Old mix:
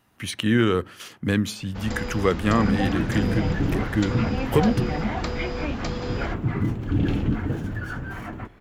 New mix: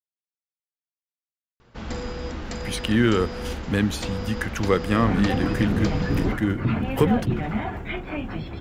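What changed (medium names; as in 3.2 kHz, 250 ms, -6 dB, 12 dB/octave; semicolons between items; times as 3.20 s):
speech: entry +2.45 s; second sound: entry +2.50 s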